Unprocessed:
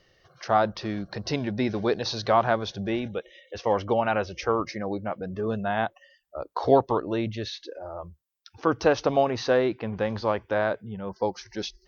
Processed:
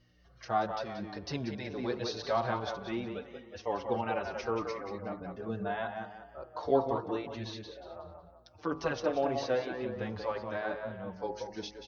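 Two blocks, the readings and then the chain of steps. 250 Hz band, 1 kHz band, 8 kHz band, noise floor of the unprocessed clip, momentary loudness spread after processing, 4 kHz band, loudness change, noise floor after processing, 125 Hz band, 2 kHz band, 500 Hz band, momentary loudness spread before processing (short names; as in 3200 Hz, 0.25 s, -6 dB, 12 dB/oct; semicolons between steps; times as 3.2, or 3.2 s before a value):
-8.5 dB, -8.0 dB, n/a, -67 dBFS, 13 LU, -8.5 dB, -8.5 dB, -58 dBFS, -9.0 dB, -8.0 dB, -8.5 dB, 14 LU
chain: de-hum 52.75 Hz, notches 28; hum 60 Hz, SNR 29 dB; on a send: tape echo 0.183 s, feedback 44%, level -5 dB, low-pass 3500 Hz; on the sum: endless flanger 5.9 ms -2 Hz; gain -6 dB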